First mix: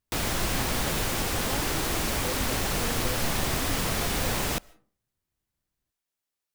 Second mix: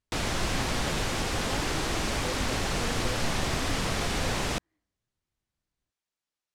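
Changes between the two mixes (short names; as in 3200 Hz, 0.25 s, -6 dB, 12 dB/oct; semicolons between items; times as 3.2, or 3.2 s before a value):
background: add LPF 7400 Hz 12 dB/oct; reverb: off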